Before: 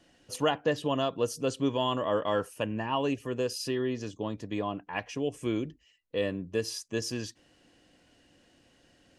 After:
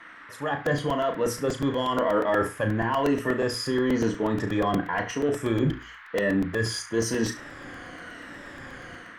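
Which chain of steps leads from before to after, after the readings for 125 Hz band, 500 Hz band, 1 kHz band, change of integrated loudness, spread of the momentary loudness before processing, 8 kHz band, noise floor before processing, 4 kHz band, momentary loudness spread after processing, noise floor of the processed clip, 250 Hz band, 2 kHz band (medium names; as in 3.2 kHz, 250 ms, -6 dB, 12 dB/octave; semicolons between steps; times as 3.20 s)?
+7.5 dB, +4.5 dB, +5.5 dB, +5.5 dB, 8 LU, +4.5 dB, -65 dBFS, +1.5 dB, 16 LU, -46 dBFS, +6.5 dB, +9.0 dB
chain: drifting ripple filter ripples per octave 1.9, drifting -0.99 Hz, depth 11 dB; peaking EQ 3.2 kHz +9.5 dB 0.22 oct; hum notches 60/120/180/240/300/360/420 Hz; reverse; compression 12:1, threshold -37 dBFS, peak gain reduction 17 dB; reverse; peak limiter -32.5 dBFS, peak gain reduction 7.5 dB; level rider gain up to 14 dB; band noise 1–3.2 kHz -52 dBFS; in parallel at -12 dB: sine folder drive 3 dB, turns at -17.5 dBFS; on the sum: resonant high shelf 2.2 kHz -6.5 dB, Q 3; flutter echo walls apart 6 m, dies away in 0.28 s; crackling interface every 0.12 s, samples 128, repeat, from 0.66 s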